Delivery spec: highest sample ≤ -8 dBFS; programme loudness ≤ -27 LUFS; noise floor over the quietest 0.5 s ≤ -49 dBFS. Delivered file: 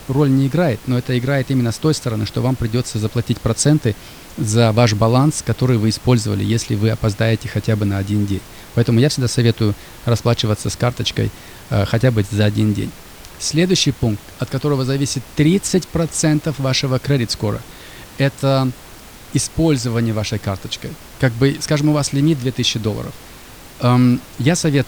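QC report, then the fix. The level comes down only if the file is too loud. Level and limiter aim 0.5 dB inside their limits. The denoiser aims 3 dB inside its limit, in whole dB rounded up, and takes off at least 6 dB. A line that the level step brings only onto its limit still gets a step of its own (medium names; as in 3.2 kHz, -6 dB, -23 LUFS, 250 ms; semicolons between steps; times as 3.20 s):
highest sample -2.5 dBFS: fail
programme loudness -18.0 LUFS: fail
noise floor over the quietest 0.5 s -38 dBFS: fail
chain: noise reduction 6 dB, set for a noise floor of -38 dBFS; trim -9.5 dB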